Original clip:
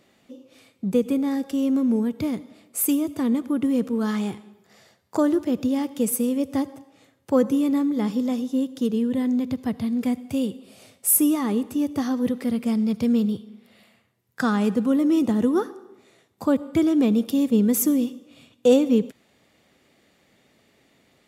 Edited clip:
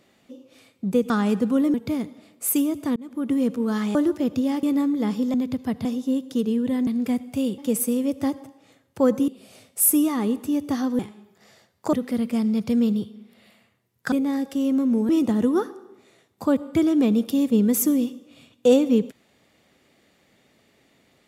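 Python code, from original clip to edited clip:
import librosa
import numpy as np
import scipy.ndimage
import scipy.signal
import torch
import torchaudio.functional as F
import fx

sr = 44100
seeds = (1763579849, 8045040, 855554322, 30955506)

y = fx.edit(x, sr, fx.swap(start_s=1.1, length_s=0.97, other_s=14.45, other_length_s=0.64),
    fx.fade_in_span(start_s=3.29, length_s=0.37),
    fx.move(start_s=4.28, length_s=0.94, to_s=12.26),
    fx.move(start_s=5.9, length_s=1.7, to_s=10.55),
    fx.move(start_s=9.33, length_s=0.51, to_s=8.31), tone=tone)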